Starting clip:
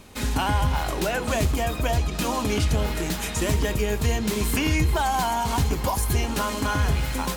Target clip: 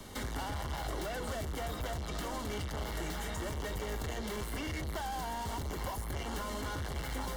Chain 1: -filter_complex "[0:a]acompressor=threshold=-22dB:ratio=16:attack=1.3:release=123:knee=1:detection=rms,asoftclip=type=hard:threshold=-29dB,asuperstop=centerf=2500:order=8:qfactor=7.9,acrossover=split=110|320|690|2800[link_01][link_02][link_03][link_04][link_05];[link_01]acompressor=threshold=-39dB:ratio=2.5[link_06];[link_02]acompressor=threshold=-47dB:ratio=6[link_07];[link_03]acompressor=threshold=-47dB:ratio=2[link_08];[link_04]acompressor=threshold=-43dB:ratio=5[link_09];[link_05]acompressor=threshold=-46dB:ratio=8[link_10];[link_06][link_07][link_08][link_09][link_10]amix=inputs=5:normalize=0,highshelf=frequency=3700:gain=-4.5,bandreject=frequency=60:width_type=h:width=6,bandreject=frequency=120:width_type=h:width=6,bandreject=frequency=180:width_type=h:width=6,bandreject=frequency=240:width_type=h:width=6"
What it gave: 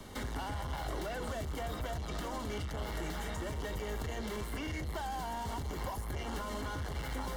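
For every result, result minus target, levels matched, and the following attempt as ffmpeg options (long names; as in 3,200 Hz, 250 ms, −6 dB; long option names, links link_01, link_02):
downward compressor: peak gain reduction +8 dB; 8,000 Hz band −3.0 dB
-filter_complex "[0:a]asoftclip=type=hard:threshold=-29dB,asuperstop=centerf=2500:order=8:qfactor=7.9,acrossover=split=110|320|690|2800[link_01][link_02][link_03][link_04][link_05];[link_01]acompressor=threshold=-39dB:ratio=2.5[link_06];[link_02]acompressor=threshold=-47dB:ratio=6[link_07];[link_03]acompressor=threshold=-47dB:ratio=2[link_08];[link_04]acompressor=threshold=-43dB:ratio=5[link_09];[link_05]acompressor=threshold=-46dB:ratio=8[link_10];[link_06][link_07][link_08][link_09][link_10]amix=inputs=5:normalize=0,highshelf=frequency=3700:gain=-4.5,bandreject=frequency=60:width_type=h:width=6,bandreject=frequency=120:width_type=h:width=6,bandreject=frequency=180:width_type=h:width=6,bandreject=frequency=240:width_type=h:width=6"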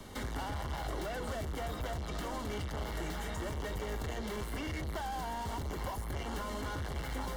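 8,000 Hz band −3.0 dB
-filter_complex "[0:a]asoftclip=type=hard:threshold=-29dB,asuperstop=centerf=2500:order=8:qfactor=7.9,acrossover=split=110|320|690|2800[link_01][link_02][link_03][link_04][link_05];[link_01]acompressor=threshold=-39dB:ratio=2.5[link_06];[link_02]acompressor=threshold=-47dB:ratio=6[link_07];[link_03]acompressor=threshold=-47dB:ratio=2[link_08];[link_04]acompressor=threshold=-43dB:ratio=5[link_09];[link_05]acompressor=threshold=-46dB:ratio=8[link_10];[link_06][link_07][link_08][link_09][link_10]amix=inputs=5:normalize=0,bandreject=frequency=60:width_type=h:width=6,bandreject=frequency=120:width_type=h:width=6,bandreject=frequency=180:width_type=h:width=6,bandreject=frequency=240:width_type=h:width=6"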